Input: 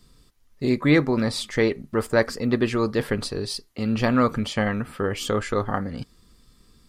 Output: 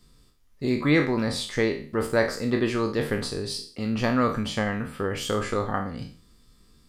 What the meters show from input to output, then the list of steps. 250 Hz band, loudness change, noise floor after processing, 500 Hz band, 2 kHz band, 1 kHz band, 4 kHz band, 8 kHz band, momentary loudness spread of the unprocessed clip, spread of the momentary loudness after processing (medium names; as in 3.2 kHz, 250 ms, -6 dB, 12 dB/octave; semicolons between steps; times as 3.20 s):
-2.5 dB, -2.0 dB, -58 dBFS, -2.0 dB, -1.0 dB, -1.5 dB, -1.0 dB, -1.0 dB, 10 LU, 9 LU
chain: spectral sustain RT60 0.43 s; trim -3.5 dB